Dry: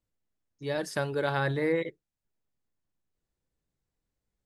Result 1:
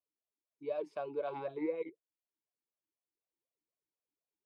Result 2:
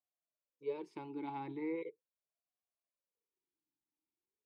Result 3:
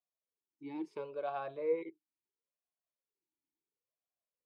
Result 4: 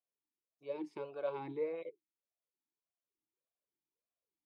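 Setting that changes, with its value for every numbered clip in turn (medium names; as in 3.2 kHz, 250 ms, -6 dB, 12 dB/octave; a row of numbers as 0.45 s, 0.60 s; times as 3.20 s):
talking filter, rate: 4 Hz, 0.39 Hz, 0.73 Hz, 1.7 Hz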